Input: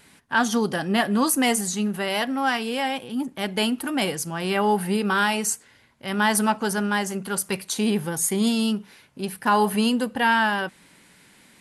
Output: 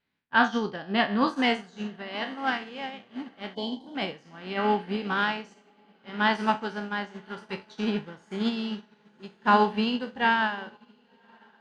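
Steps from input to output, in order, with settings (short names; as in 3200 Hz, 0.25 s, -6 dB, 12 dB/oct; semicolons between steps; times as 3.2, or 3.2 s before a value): spectral trails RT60 0.50 s; on a send: diffused feedback echo 1.085 s, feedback 62%, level -13 dB; on the sum: spectral gain 3.55–3.95, 1100–3000 Hz -22 dB; LPF 4400 Hz 24 dB/oct; upward expander 2.5:1, over -34 dBFS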